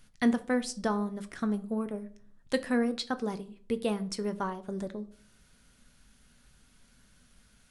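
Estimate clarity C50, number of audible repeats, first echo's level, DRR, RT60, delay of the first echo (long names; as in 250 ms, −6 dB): 18.0 dB, no echo audible, no echo audible, 10.0 dB, 0.50 s, no echo audible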